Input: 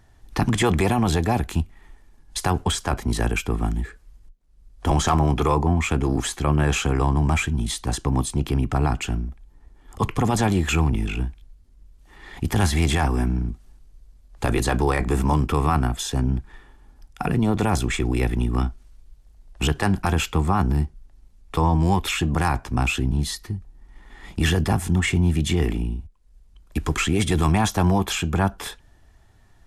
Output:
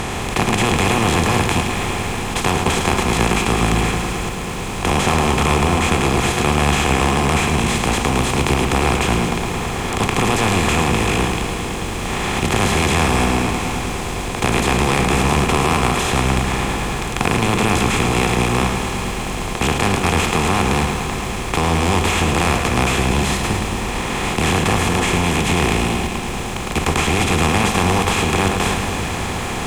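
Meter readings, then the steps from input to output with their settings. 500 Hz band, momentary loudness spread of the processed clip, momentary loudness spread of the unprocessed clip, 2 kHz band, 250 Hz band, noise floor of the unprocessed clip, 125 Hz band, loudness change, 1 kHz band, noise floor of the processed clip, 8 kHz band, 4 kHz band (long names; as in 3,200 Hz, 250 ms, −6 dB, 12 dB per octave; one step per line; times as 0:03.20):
+7.5 dB, 7 LU, 10 LU, +10.0 dB, +4.5 dB, −54 dBFS, +2.5 dB, +5.0 dB, +8.0 dB, −24 dBFS, +8.5 dB, +9.5 dB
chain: compressor on every frequency bin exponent 0.2
feedback echo at a low word length 109 ms, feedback 80%, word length 6 bits, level −8 dB
level −5.5 dB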